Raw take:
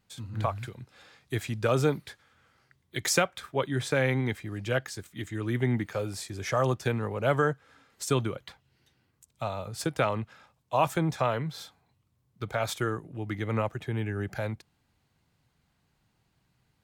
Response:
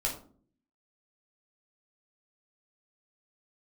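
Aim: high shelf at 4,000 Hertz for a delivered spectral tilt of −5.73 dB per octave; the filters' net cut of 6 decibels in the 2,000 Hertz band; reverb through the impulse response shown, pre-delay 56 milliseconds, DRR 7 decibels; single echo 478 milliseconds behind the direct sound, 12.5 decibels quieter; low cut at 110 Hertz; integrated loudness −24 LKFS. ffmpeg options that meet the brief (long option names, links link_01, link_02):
-filter_complex "[0:a]highpass=110,equalizer=frequency=2000:width_type=o:gain=-7.5,highshelf=frequency=4000:gain=-3,aecho=1:1:478:0.237,asplit=2[link_01][link_02];[1:a]atrim=start_sample=2205,adelay=56[link_03];[link_02][link_03]afir=irnorm=-1:irlink=0,volume=-12dB[link_04];[link_01][link_04]amix=inputs=2:normalize=0,volume=7dB"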